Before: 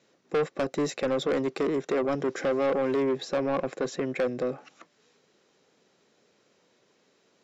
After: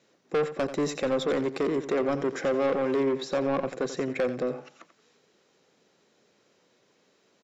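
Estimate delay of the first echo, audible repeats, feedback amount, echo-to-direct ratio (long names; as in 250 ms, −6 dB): 88 ms, 2, 23%, −12.0 dB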